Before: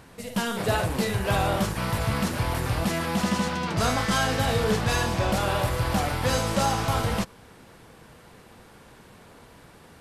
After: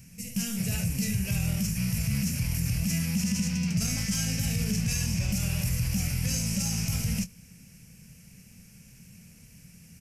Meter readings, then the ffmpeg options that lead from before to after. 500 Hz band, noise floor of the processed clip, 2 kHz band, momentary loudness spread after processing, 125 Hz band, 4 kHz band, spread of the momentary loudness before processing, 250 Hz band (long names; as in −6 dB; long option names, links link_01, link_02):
−20.0 dB, −53 dBFS, −9.0 dB, 2 LU, −0.5 dB, −4.5 dB, 4 LU, −1.0 dB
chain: -filter_complex "[0:a]firequalizer=gain_entry='entry(100,0);entry(180,6);entry(320,-18);entry(560,-18);entry(980,-26);entry(2500,1);entry(3600,-16);entry(5500,8);entry(8700,3);entry(13000,7)':delay=0.05:min_phase=1,alimiter=limit=-19dB:level=0:latency=1:release=24,asplit=2[link_01][link_02];[link_02]adelay=23,volume=-14dB[link_03];[link_01][link_03]amix=inputs=2:normalize=0"